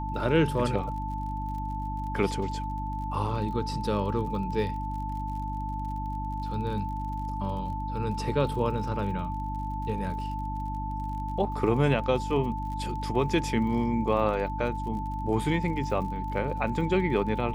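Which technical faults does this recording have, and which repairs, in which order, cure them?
surface crackle 45 per second −39 dBFS
mains hum 50 Hz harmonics 6 −34 dBFS
whistle 880 Hz −34 dBFS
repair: click removal
notch filter 880 Hz, Q 30
hum removal 50 Hz, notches 6

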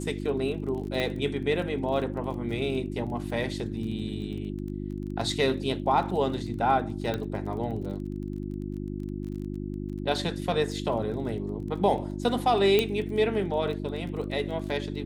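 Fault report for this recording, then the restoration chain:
surface crackle 22 per second −37 dBFS
mains hum 50 Hz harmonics 7 −34 dBFS
0:01.00: click −16 dBFS
0:07.14: click −17 dBFS
0:12.79: click −10 dBFS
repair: click removal
hum removal 50 Hz, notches 7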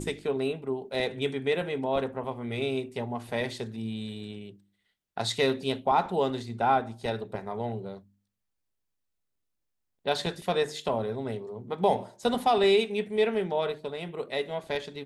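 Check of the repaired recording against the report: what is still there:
none of them is left

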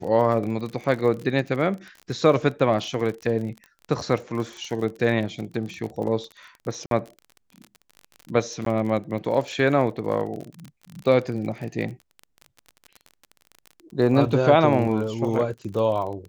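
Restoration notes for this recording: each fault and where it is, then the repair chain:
surface crackle 36 per second −31 dBFS
0:06.86–0:06.91: drop-out 52 ms
0:08.65–0:08.66: drop-out 13 ms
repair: click removal
repair the gap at 0:06.86, 52 ms
repair the gap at 0:08.65, 13 ms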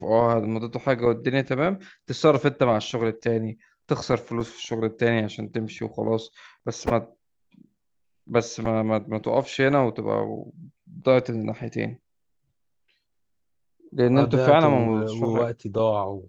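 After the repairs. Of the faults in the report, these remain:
none of them is left

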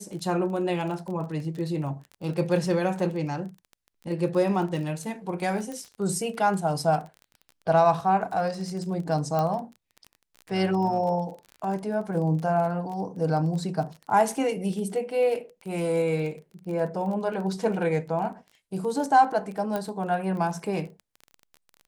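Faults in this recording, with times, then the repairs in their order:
surface crackle 25 per second −34 dBFS
0:05.72: click
0:09.39: click −15 dBFS
0:19.76: click −16 dBFS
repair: click removal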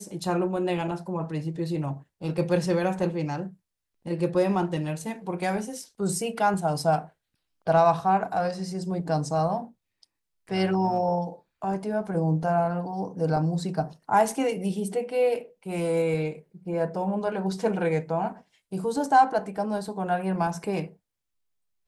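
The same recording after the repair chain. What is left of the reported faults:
0:05.72: click
0:19.76: click

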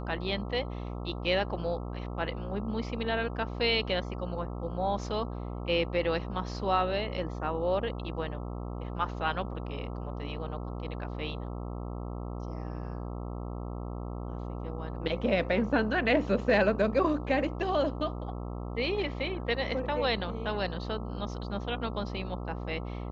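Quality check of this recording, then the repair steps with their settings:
mains buzz 60 Hz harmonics 22 −37 dBFS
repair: hum removal 60 Hz, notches 22

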